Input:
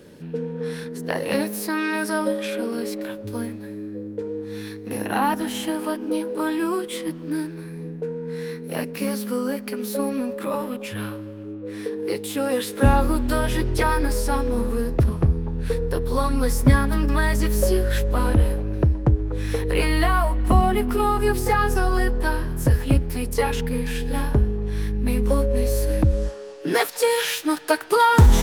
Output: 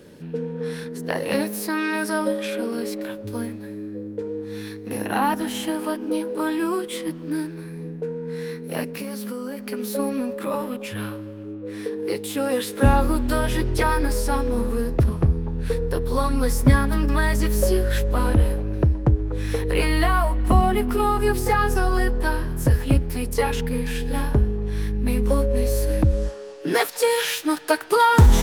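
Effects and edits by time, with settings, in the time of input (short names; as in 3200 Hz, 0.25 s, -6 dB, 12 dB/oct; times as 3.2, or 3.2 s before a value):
8.87–9.69 compressor, threshold -27 dBFS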